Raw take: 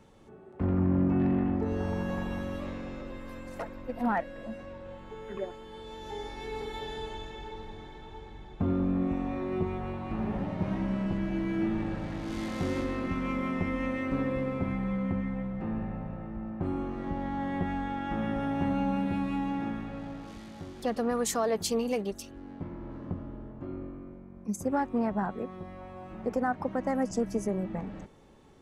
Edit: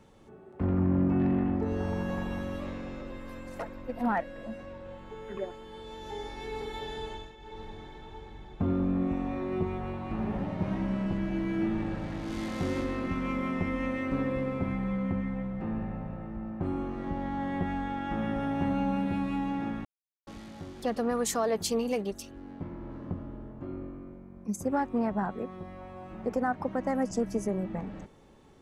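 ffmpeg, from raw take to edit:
-filter_complex "[0:a]asplit=4[a][b][c][d];[a]atrim=end=7.37,asetpts=PTS-STARTPTS,afade=t=out:st=7.12:d=0.25:silence=0.298538[e];[b]atrim=start=7.37:end=19.85,asetpts=PTS-STARTPTS,afade=t=in:d=0.25:silence=0.298538,afade=t=out:st=12.476:d=0.004:c=hsin[f];[c]atrim=start=19.85:end=20.27,asetpts=PTS-STARTPTS,volume=0[g];[d]atrim=start=20.27,asetpts=PTS-STARTPTS,afade=t=in:d=0.004:c=hsin[h];[e][f][g][h]concat=n=4:v=0:a=1"

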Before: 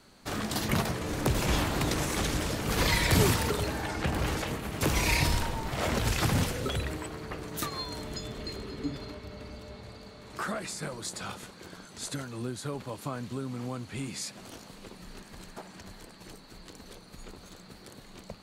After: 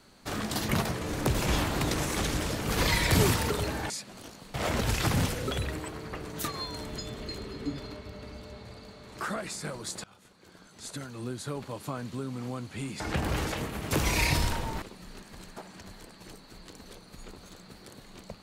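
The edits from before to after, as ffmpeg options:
-filter_complex "[0:a]asplit=6[a][b][c][d][e][f];[a]atrim=end=3.902[g];[b]atrim=start=14.178:end=14.822[h];[c]atrim=start=5.718:end=11.22,asetpts=PTS-STARTPTS,afade=t=out:st=5.498:d=0.004:c=hsin:silence=0.0707946[i];[d]atrim=start=11.22:end=14.182,asetpts=PTS-STARTPTS,afade=t=in:d=1.37:silence=0.0707946[j];[e]atrim=start=3.898:end=5.722[k];[f]atrim=start=14.818[l];[g][h]acrossfade=d=0.004:c1=hsin:c2=hsin[m];[i][j]concat=n=2:v=0:a=1[n];[m][n]acrossfade=d=0.004:c1=hsin:c2=hsin[o];[o][k]acrossfade=d=0.004:c1=hsin:c2=hsin[p];[p][l]acrossfade=d=0.004:c1=hsin:c2=hsin"

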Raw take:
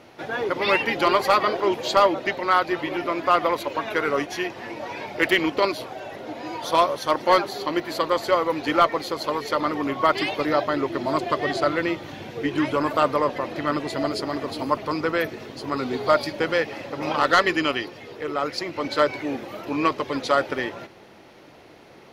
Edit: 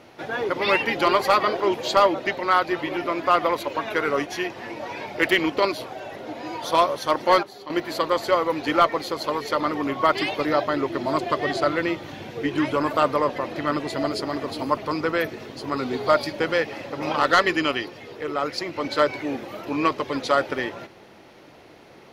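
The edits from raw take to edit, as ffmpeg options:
-filter_complex "[0:a]asplit=3[a][b][c];[a]atrim=end=7.432[d];[b]atrim=start=7.428:end=7.702,asetpts=PTS-STARTPTS,volume=-11dB[e];[c]atrim=start=7.698[f];[d][e]acrossfade=d=0.004:c1=hsin:c2=hsin[g];[g][f]acrossfade=d=0.004:c1=hsin:c2=hsin"

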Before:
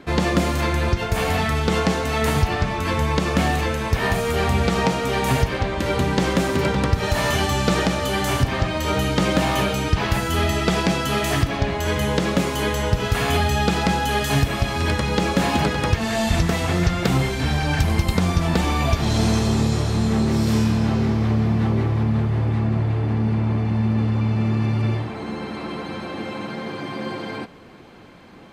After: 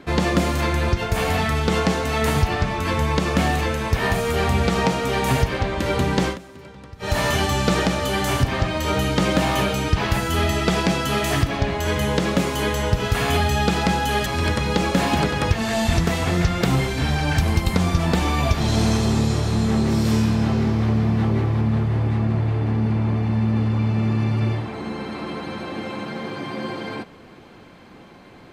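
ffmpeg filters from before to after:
-filter_complex "[0:a]asplit=4[a][b][c][d];[a]atrim=end=6.38,asetpts=PTS-STARTPTS,afade=t=out:st=6.21:d=0.17:c=qsin:silence=0.0891251[e];[b]atrim=start=6.38:end=6.99,asetpts=PTS-STARTPTS,volume=-21dB[f];[c]atrim=start=6.99:end=14.262,asetpts=PTS-STARTPTS,afade=t=in:d=0.17:c=qsin:silence=0.0891251[g];[d]atrim=start=14.678[h];[e][f][g]concat=n=3:v=0:a=1[i];[i][h]acrossfade=d=0.004:c1=hsin:c2=hsin"

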